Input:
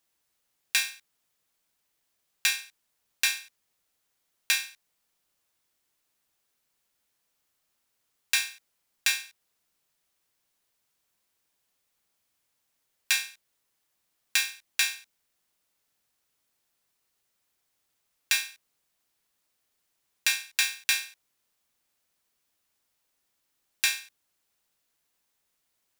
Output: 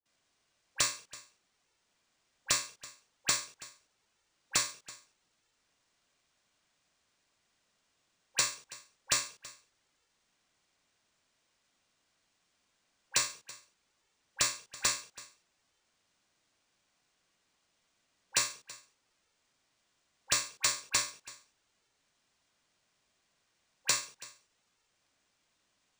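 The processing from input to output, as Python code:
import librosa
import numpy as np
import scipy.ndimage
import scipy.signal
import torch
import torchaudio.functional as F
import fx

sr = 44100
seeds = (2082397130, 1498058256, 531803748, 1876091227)

y = fx.high_shelf_res(x, sr, hz=4800.0, db=13.0, q=1.5)
y = fx.dispersion(y, sr, late='highs', ms=58.0, hz=1300.0)
y = fx.env_flanger(y, sr, rest_ms=2.3, full_db=-18.0)
y = y + 10.0 ** (-19.5 / 20.0) * np.pad(y, (int(329 * sr / 1000.0), 0))[:len(y)]
y = np.interp(np.arange(len(y)), np.arange(len(y))[::3], y[::3])
y = y * 10.0 ** (-7.5 / 20.0)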